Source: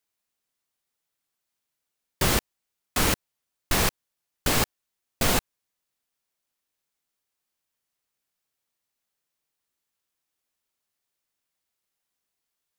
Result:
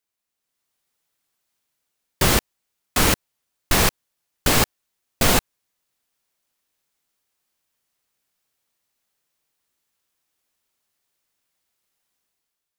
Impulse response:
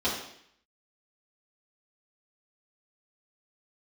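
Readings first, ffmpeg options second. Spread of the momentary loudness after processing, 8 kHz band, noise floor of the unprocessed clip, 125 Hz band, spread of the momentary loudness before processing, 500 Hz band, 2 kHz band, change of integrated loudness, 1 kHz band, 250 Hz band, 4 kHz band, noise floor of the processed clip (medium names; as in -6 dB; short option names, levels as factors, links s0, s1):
6 LU, +5.0 dB, -83 dBFS, +5.0 dB, 6 LU, +5.0 dB, +5.0 dB, +5.0 dB, +5.0 dB, +5.0 dB, +5.0 dB, -82 dBFS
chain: -af "dynaudnorm=f=120:g=9:m=2.51,volume=0.841"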